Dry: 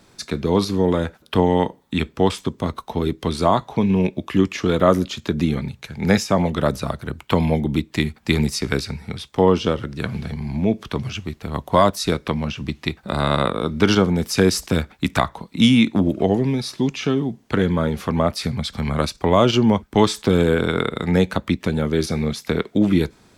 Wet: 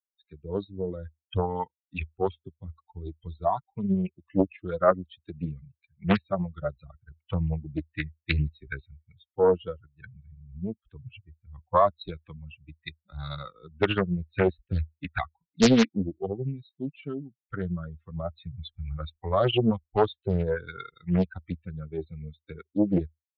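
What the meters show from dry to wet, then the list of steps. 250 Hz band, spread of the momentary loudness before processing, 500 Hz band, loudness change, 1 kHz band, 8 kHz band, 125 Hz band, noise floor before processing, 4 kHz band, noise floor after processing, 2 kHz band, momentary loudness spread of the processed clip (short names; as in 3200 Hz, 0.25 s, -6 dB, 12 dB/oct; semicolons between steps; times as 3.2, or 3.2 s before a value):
-10.0 dB, 10 LU, -8.0 dB, -8.0 dB, -8.0 dB, -14.0 dB, -9.0 dB, -54 dBFS, -12.0 dB, under -85 dBFS, -9.5 dB, 19 LU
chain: per-bin expansion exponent 3; bell 79 Hz +3 dB 0.29 oct; downsampling 8000 Hz; Doppler distortion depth 0.91 ms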